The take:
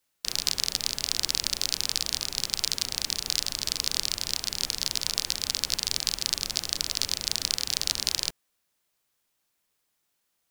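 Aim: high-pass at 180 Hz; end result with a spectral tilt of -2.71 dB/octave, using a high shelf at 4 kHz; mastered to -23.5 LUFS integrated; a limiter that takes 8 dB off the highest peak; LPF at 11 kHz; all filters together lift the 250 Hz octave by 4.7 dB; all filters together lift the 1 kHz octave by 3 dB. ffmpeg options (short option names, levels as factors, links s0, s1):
-af "highpass=180,lowpass=11000,equalizer=f=250:t=o:g=7.5,equalizer=f=1000:t=o:g=4,highshelf=f=4000:g=-8,volume=4.22,alimiter=limit=0.75:level=0:latency=1"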